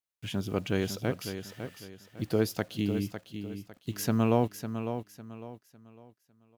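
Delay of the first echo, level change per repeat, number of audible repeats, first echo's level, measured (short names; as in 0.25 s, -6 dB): 0.553 s, -10.0 dB, 3, -9.0 dB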